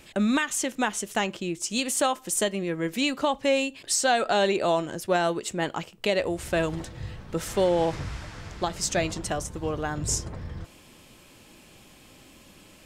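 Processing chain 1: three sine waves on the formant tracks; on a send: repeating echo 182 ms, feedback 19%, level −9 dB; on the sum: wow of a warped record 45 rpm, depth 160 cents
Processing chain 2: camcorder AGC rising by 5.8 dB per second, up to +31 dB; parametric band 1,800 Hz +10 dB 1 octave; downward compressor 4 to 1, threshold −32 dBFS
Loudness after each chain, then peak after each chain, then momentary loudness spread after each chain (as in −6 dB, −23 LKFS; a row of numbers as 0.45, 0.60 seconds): −26.5, −34.5 LKFS; −10.0, −16.5 dBFS; 14, 7 LU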